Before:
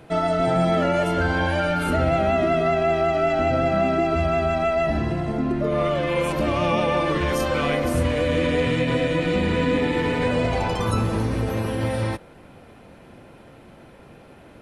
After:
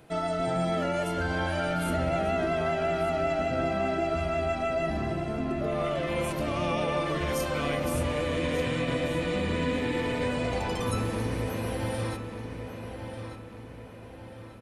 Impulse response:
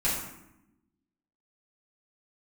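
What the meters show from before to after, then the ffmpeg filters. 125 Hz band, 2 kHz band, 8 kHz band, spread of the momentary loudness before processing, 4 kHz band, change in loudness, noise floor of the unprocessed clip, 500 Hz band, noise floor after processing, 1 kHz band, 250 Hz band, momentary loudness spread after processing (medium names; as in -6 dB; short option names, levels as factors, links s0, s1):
-7.0 dB, -6.5 dB, -2.0 dB, 4 LU, -5.5 dB, -7.5 dB, -47 dBFS, -7.0 dB, -44 dBFS, -7.0 dB, -7.0 dB, 12 LU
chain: -filter_complex "[0:a]highshelf=f=5700:g=8.5,asplit=2[s0][s1];[s1]adelay=1191,lowpass=f=4800:p=1,volume=0.398,asplit=2[s2][s3];[s3]adelay=1191,lowpass=f=4800:p=1,volume=0.47,asplit=2[s4][s5];[s5]adelay=1191,lowpass=f=4800:p=1,volume=0.47,asplit=2[s6][s7];[s7]adelay=1191,lowpass=f=4800:p=1,volume=0.47,asplit=2[s8][s9];[s9]adelay=1191,lowpass=f=4800:p=1,volume=0.47[s10];[s2][s4][s6][s8][s10]amix=inputs=5:normalize=0[s11];[s0][s11]amix=inputs=2:normalize=0,volume=0.398"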